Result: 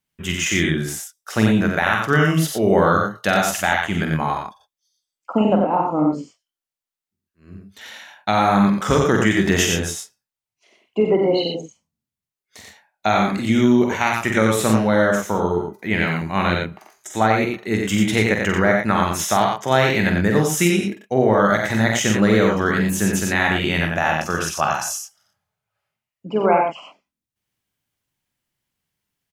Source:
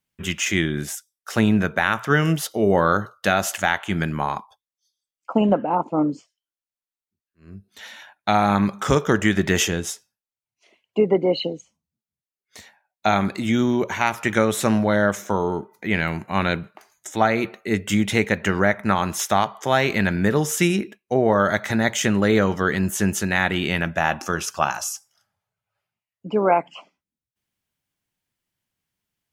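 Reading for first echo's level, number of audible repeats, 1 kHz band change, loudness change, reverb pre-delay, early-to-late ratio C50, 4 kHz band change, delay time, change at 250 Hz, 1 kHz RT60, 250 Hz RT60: -6.0 dB, 2, +2.5 dB, +2.5 dB, no reverb, no reverb, +2.5 dB, 46 ms, +3.0 dB, no reverb, no reverb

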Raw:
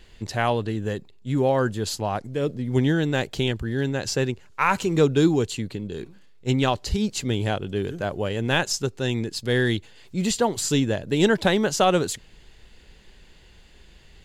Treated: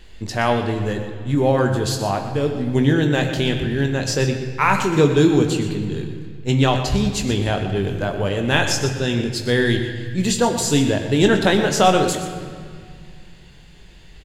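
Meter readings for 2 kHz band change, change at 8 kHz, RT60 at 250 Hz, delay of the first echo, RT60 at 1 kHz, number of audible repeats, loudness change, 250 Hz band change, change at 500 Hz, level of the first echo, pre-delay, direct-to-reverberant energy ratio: +5.0 dB, +4.5 dB, 2.9 s, 122 ms, 2.0 s, 1, +4.5 dB, +5.0 dB, +4.0 dB, -12.0 dB, 20 ms, 3.0 dB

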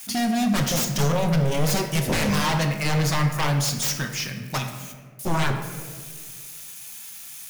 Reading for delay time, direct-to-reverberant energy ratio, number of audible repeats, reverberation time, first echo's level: no echo, 4.0 dB, no echo, 1.8 s, no echo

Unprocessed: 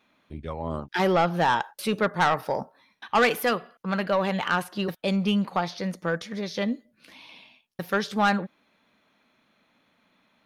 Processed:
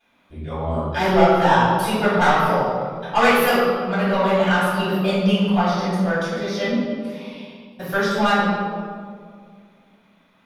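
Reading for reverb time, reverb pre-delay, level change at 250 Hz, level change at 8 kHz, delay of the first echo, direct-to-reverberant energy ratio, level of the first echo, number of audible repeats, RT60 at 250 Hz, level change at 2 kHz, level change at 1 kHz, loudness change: 2.2 s, 3 ms, +7.5 dB, +5.5 dB, no echo, -13.0 dB, no echo, no echo, 2.4 s, +6.5 dB, +7.0 dB, +6.5 dB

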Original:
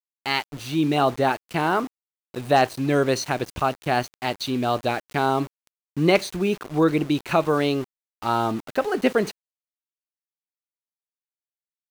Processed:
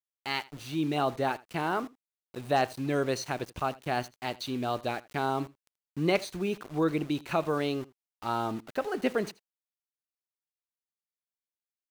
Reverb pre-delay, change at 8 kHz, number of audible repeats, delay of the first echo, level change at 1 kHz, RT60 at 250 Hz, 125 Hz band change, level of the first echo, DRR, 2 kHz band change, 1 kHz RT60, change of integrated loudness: no reverb, -8.0 dB, 1, 81 ms, -8.0 dB, no reverb, -8.0 dB, -21.5 dB, no reverb, -8.0 dB, no reverb, -8.0 dB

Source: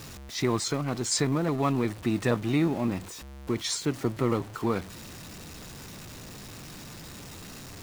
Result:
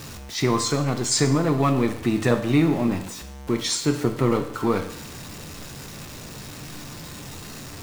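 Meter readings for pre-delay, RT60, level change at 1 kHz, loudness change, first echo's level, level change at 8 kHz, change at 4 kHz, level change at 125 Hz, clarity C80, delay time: 7 ms, 0.65 s, +6.0 dB, +6.0 dB, no echo, +5.5 dB, +5.5 dB, +6.0 dB, 12.5 dB, no echo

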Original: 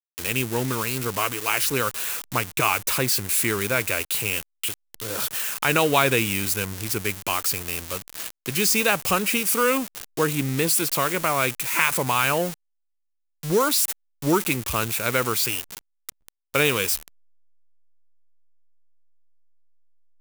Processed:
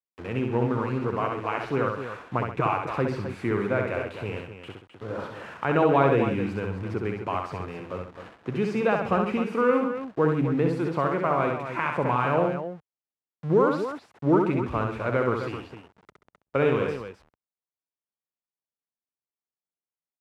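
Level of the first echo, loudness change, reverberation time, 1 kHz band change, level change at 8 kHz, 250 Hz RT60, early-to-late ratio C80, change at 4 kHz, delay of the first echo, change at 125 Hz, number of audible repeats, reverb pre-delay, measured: -4.0 dB, -3.5 dB, no reverb, -1.0 dB, under -30 dB, no reverb, no reverb, -18.0 dB, 65 ms, +1.5 dB, 3, no reverb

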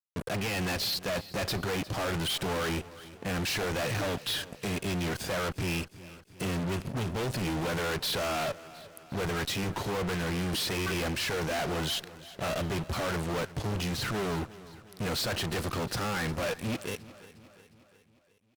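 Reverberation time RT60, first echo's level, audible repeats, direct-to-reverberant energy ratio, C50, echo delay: no reverb, -18.0 dB, 4, no reverb, no reverb, 357 ms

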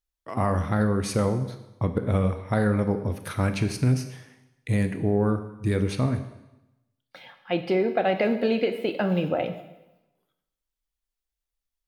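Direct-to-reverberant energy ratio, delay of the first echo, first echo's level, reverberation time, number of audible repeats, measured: 8.0 dB, no echo, no echo, 0.95 s, no echo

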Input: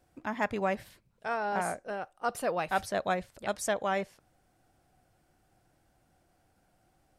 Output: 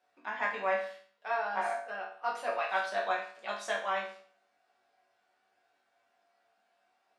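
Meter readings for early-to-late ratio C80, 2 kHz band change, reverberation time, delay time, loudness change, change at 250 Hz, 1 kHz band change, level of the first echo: 10.0 dB, +2.0 dB, 0.50 s, no echo, -1.0 dB, -14.5 dB, -0.5 dB, no echo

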